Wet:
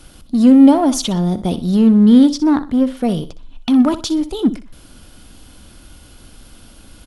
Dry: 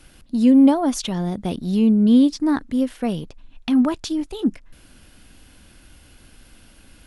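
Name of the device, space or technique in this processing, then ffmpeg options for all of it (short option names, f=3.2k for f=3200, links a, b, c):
parallel distortion: -filter_complex "[0:a]asettb=1/sr,asplit=3[a][b][c];[a]atrim=end=2.384[d];[b]atrim=start=2.38:end=2.97,asetpts=PTS-STARTPTS,afade=t=in:d=0.004:c=qsin,afade=t=out:st=0.586:d=0.004:c=qsin,acrossover=split=3700[e][f];[f]acompressor=threshold=-56dB:ratio=4:attack=1:release=60[g];[e][g]amix=inputs=2:normalize=0[h];[c]atrim=start=2.966[i];[d][h]acrossfade=d=0.004:c1=hsin:c2=qsin[j];[j][i]acrossfade=d=0.004:c1=qsin:c2=hsin,superequalizer=11b=0.501:12b=0.562,aecho=1:1:62|124|186:0.188|0.0546|0.0158,asplit=2[k][l];[l]asoftclip=type=hard:threshold=-23dB,volume=-8dB[m];[k][m]amix=inputs=2:normalize=0,volume=4dB"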